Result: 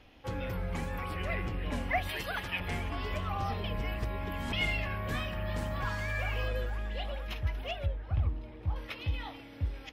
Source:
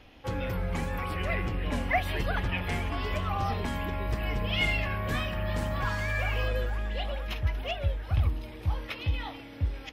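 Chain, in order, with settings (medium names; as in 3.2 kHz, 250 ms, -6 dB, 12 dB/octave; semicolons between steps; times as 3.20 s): 2.09–2.60 s: tilt EQ +2.5 dB/octave; 3.64–4.53 s: reverse; 7.86–8.76 s: low-pass 1.4 kHz 6 dB/octave; trim -4 dB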